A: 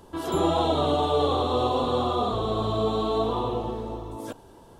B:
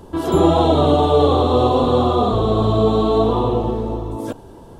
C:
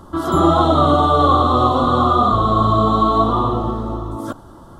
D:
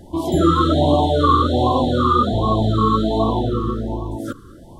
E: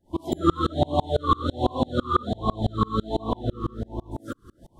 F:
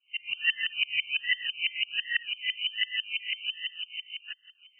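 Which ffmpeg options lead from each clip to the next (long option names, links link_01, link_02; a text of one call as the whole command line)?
ffmpeg -i in.wav -af "tiltshelf=frequency=670:gain=4,volume=8dB" out.wav
ffmpeg -i in.wav -af "superequalizer=7b=0.398:10b=3.55:12b=0.355" out.wav
ffmpeg -i in.wav -af "afftfilt=real='re*(1-between(b*sr/1024,710*pow(1600/710,0.5+0.5*sin(2*PI*1.3*pts/sr))/1.41,710*pow(1600/710,0.5+0.5*sin(2*PI*1.3*pts/sr))*1.41))':imag='im*(1-between(b*sr/1024,710*pow(1600/710,0.5+0.5*sin(2*PI*1.3*pts/sr))/1.41,710*pow(1600/710,0.5+0.5*sin(2*PI*1.3*pts/sr))*1.41))':win_size=1024:overlap=0.75" out.wav
ffmpeg -i in.wav -af "aeval=exprs='val(0)*pow(10,-33*if(lt(mod(-6*n/s,1),2*abs(-6)/1000),1-mod(-6*n/s,1)/(2*abs(-6)/1000),(mod(-6*n/s,1)-2*abs(-6)/1000)/(1-2*abs(-6)/1000))/20)':channel_layout=same" out.wav
ffmpeg -i in.wav -af "lowpass=frequency=2600:width_type=q:width=0.5098,lowpass=frequency=2600:width_type=q:width=0.6013,lowpass=frequency=2600:width_type=q:width=0.9,lowpass=frequency=2600:width_type=q:width=2.563,afreqshift=-3100,volume=-6.5dB" out.wav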